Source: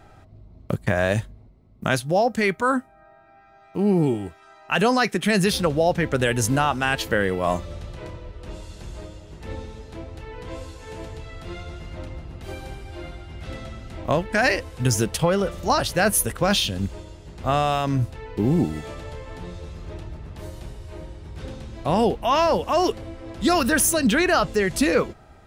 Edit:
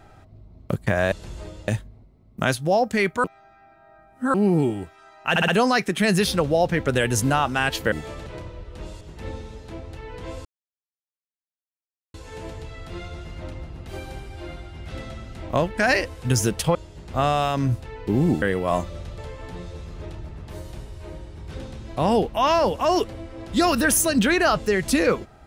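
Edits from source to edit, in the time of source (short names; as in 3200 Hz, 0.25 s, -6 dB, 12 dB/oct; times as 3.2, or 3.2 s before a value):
2.68–3.78 reverse
4.74 stutter 0.06 s, 4 plays
7.18–7.94 swap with 18.72–19.06
8.69–9.25 move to 1.12
10.69 insert silence 1.69 s
15.3–17.05 cut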